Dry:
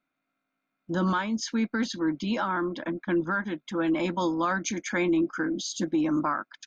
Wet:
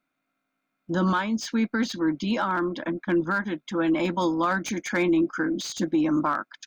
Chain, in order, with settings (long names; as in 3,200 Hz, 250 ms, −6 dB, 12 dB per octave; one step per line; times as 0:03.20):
slew-rate limiting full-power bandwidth 110 Hz
level +2.5 dB